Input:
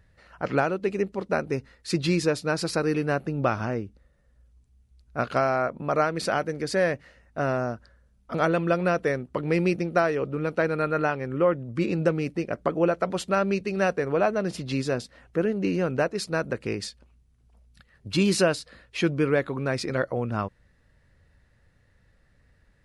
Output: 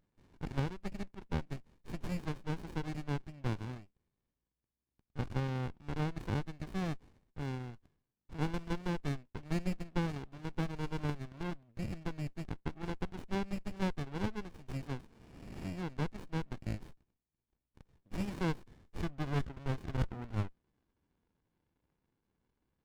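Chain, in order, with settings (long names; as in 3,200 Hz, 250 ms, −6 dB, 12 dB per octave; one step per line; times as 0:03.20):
band-pass filter sweep 2,400 Hz → 1,100 Hz, 0:17.68–0:21.55
healed spectral selection 0:15.06–0:15.62, 230–3,000 Hz both
windowed peak hold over 65 samples
level +1.5 dB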